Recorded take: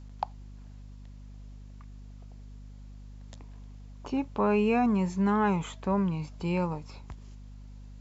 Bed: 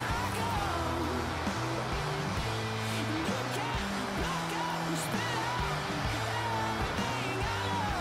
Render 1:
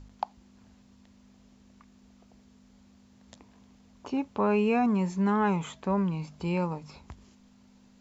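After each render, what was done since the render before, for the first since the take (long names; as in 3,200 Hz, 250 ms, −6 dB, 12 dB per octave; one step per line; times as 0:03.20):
hum removal 50 Hz, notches 3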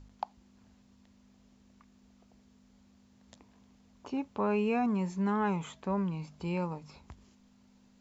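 level −4.5 dB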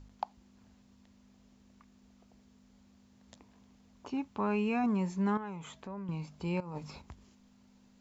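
0:04.09–0:04.84: parametric band 520 Hz −7.5 dB 0.66 octaves
0:05.37–0:06.09: downward compressor 2.5 to 1, threshold −44 dBFS
0:06.60–0:07.02: compressor whose output falls as the input rises −42 dBFS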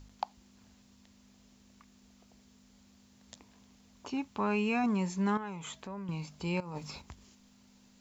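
high-shelf EQ 2,300 Hz +9 dB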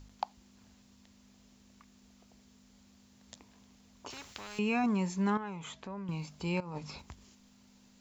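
0:04.10–0:04.59: every bin compressed towards the loudest bin 4 to 1
0:05.30–0:06.08: high-frequency loss of the air 53 metres
0:06.59–0:06.99: high-frequency loss of the air 51 metres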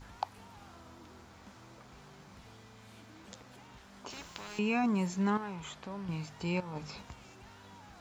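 mix in bed −22.5 dB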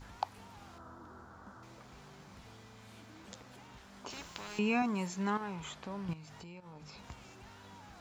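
0:00.78–0:01.63: high shelf with overshoot 1,800 Hz −8 dB, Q 3
0:04.82–0:05.41: low-shelf EQ 400 Hz −6.5 dB
0:06.13–0:07.05: downward compressor 8 to 1, threshold −47 dBFS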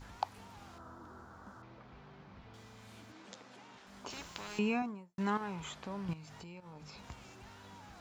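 0:01.62–0:02.54: high-frequency loss of the air 240 metres
0:03.12–0:03.87: band-pass filter 200–7,100 Hz
0:04.55–0:05.18: fade out and dull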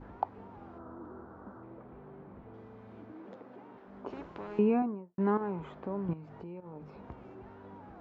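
low-pass filter 1,400 Hz 12 dB per octave
parametric band 370 Hz +10.5 dB 1.7 octaves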